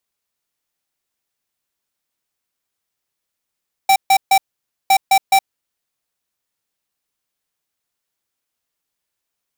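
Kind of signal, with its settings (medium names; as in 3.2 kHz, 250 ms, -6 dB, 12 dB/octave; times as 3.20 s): beep pattern square 777 Hz, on 0.07 s, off 0.14 s, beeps 3, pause 0.52 s, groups 2, -11 dBFS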